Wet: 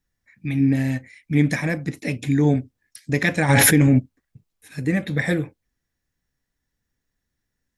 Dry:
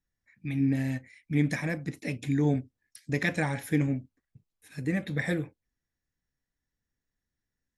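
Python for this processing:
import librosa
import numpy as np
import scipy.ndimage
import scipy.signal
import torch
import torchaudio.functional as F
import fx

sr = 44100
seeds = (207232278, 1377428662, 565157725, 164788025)

y = fx.env_flatten(x, sr, amount_pct=100, at=(3.48, 3.98), fade=0.02)
y = y * 10.0 ** (7.5 / 20.0)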